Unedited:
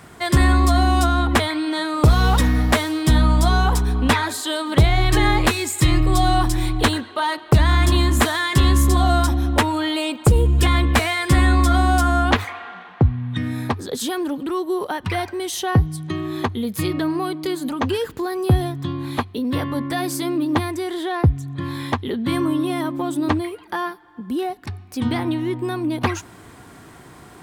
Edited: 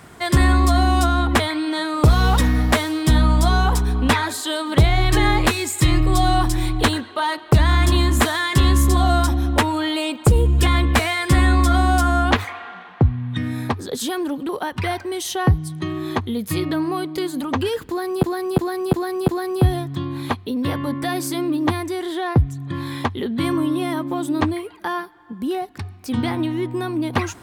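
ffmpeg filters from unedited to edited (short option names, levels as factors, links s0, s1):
-filter_complex "[0:a]asplit=6[s0][s1][s2][s3][s4][s5];[s0]atrim=end=14.492[s6];[s1]atrim=start=14.768:end=18.512[s7];[s2]atrim=start=18.158:end=18.512[s8];[s3]atrim=start=18.158:end=18.512[s9];[s4]atrim=start=18.158:end=18.512[s10];[s5]atrim=start=18.158[s11];[s6][s7]acrossfade=d=0.004:c1=hsin:c2=hsin[s12];[s12][s8]acrossfade=d=0.004:c1=hsin:c2=hsin[s13];[s13][s9]acrossfade=d=0.004:c1=hsin:c2=hsin[s14];[s14][s10]acrossfade=d=0.004:c1=hsin:c2=hsin[s15];[s15][s11]acrossfade=d=0.004:c1=hsin:c2=hsin"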